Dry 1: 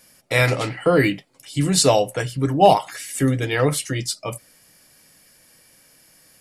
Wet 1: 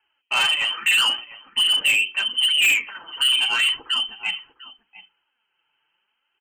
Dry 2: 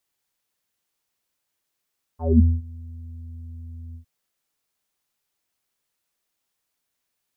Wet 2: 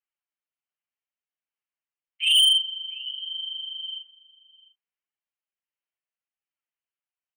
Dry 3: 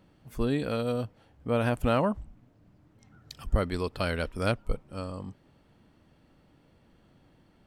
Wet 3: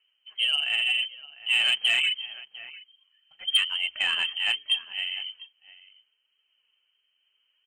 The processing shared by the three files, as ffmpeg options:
-filter_complex "[0:a]lowpass=f=2.7k:t=q:w=0.5098,lowpass=f=2.7k:t=q:w=0.6013,lowpass=f=2.7k:t=q:w=0.9,lowpass=f=2.7k:t=q:w=2.563,afreqshift=-3200,tremolo=f=1.2:d=0.29,highshelf=f=2.3k:g=7.5,flanger=delay=2.2:depth=5.1:regen=24:speed=0.78:shape=triangular,agate=range=-15dB:threshold=-51dB:ratio=16:detection=peak,bandreject=f=60:t=h:w=6,bandreject=f=120:t=h:w=6,bandreject=f=180:t=h:w=6,bandreject=f=240:t=h:w=6,bandreject=f=300:t=h:w=6,bandreject=f=360:t=h:w=6,bandreject=f=420:t=h:w=6,asplit=2[a][b];[b]adelay=699.7,volume=-16dB,highshelf=f=4k:g=-15.7[c];[a][c]amix=inputs=2:normalize=0,asoftclip=type=tanh:threshold=-18.5dB,volume=4dB"

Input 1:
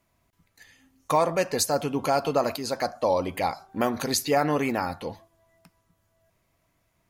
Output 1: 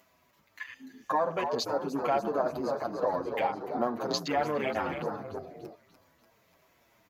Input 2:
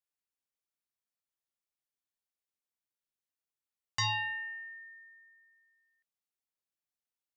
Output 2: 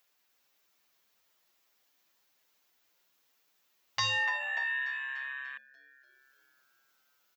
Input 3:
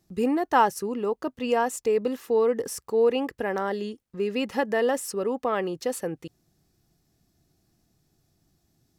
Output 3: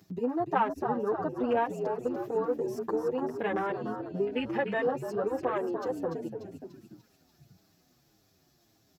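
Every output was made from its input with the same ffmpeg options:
-filter_complex "[0:a]asplit=2[a][b];[b]acompressor=mode=upward:threshold=-24dB:ratio=2.5,volume=-2.5dB[c];[a][c]amix=inputs=2:normalize=0,equalizer=f=9.3k:t=o:w=0.41:g=-14.5,acompressor=threshold=-31dB:ratio=2,asplit=9[d][e][f][g][h][i][j][k][l];[e]adelay=293,afreqshift=-67,volume=-6dB[m];[f]adelay=586,afreqshift=-134,volume=-10.3dB[n];[g]adelay=879,afreqshift=-201,volume=-14.6dB[o];[h]adelay=1172,afreqshift=-268,volume=-18.9dB[p];[i]adelay=1465,afreqshift=-335,volume=-23.2dB[q];[j]adelay=1758,afreqshift=-402,volume=-27.5dB[r];[k]adelay=2051,afreqshift=-469,volume=-31.8dB[s];[l]adelay=2344,afreqshift=-536,volume=-36.1dB[t];[d][m][n][o][p][q][r][s][t]amix=inputs=9:normalize=0,asoftclip=type=tanh:threshold=-12dB,highpass=f=340:p=1,afwtdn=0.0178,asplit=2[u][v];[v]adelay=7.2,afreqshift=-1.7[w];[u][w]amix=inputs=2:normalize=1,volume=3dB"

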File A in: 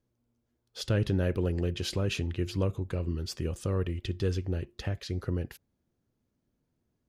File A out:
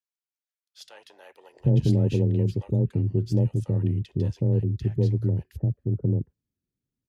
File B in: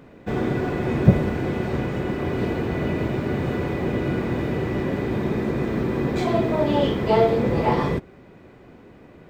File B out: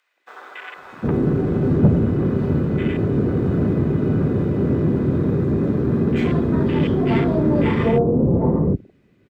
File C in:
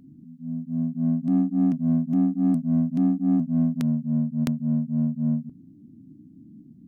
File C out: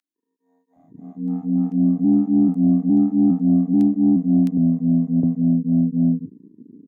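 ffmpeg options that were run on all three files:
-filter_complex "[0:a]afwtdn=0.0251,equalizer=f=750:w=0.73:g=-10.5,afreqshift=18,asoftclip=type=tanh:threshold=-16.5dB,acrossover=split=870[a][b];[a]adelay=760[c];[c][b]amix=inputs=2:normalize=0,volume=9dB"

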